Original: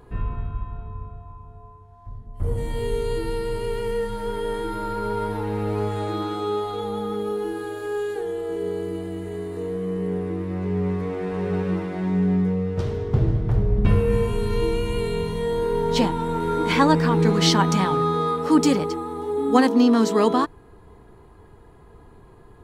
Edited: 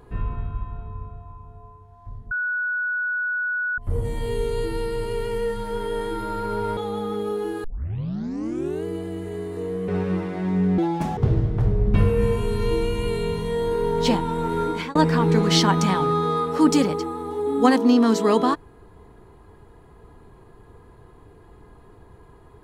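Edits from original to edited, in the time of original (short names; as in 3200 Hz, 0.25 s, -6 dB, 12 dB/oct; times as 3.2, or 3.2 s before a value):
2.31 add tone 1470 Hz -22 dBFS 1.47 s
5.3–6.77 cut
7.64 tape start 1.21 s
9.88–11.47 cut
12.37–13.08 speed 181%
16.53–16.86 fade out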